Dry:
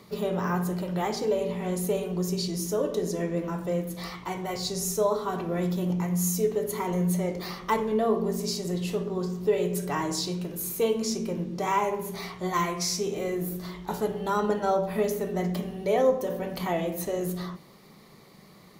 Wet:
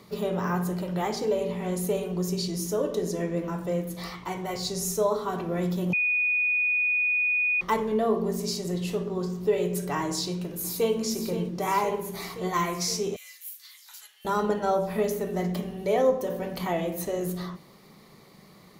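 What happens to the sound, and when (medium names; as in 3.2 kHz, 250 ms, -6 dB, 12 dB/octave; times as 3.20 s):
5.93–7.61 s: bleep 2.47 kHz -21.5 dBFS
10.12–10.96 s: echo throw 520 ms, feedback 75%, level -10 dB
13.16–14.25 s: Bessel high-pass 2.9 kHz, order 4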